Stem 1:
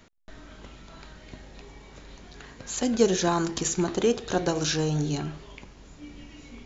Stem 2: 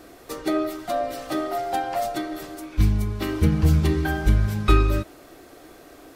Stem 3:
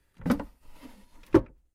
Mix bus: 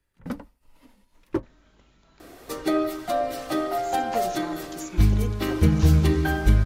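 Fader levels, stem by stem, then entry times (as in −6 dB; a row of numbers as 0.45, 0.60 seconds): −13.0, +0.5, −6.5 decibels; 1.15, 2.20, 0.00 seconds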